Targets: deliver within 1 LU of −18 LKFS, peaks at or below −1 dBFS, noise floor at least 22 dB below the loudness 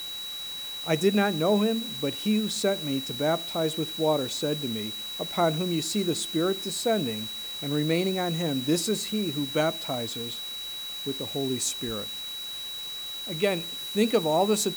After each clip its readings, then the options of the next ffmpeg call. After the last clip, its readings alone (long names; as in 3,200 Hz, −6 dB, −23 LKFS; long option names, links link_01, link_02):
interfering tone 3,900 Hz; level of the tone −34 dBFS; background noise floor −36 dBFS; target noise floor −50 dBFS; integrated loudness −27.5 LKFS; sample peak −9.5 dBFS; target loudness −18.0 LKFS
→ -af "bandreject=frequency=3900:width=30"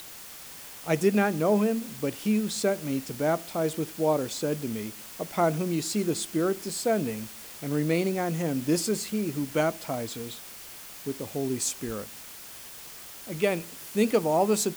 interfering tone none found; background noise floor −44 dBFS; target noise floor −50 dBFS
→ -af "afftdn=noise_reduction=6:noise_floor=-44"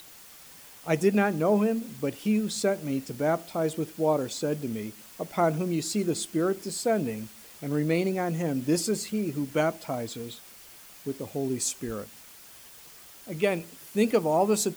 background noise floor −50 dBFS; integrated loudness −28.0 LKFS; sample peak −9.5 dBFS; target loudness −18.0 LKFS
→ -af "volume=10dB,alimiter=limit=-1dB:level=0:latency=1"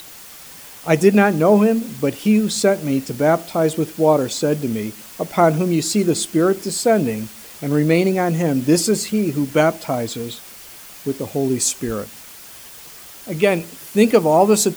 integrated loudness −18.0 LKFS; sample peak −1.0 dBFS; background noise floor −40 dBFS